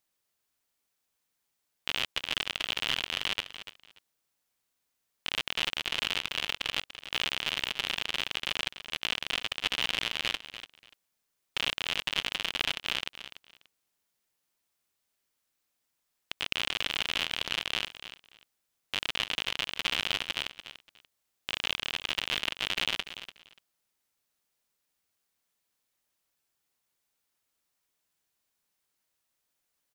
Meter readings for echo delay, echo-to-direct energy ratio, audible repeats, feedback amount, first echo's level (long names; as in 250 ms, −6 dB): 291 ms, −12.5 dB, 2, 19%, −12.5 dB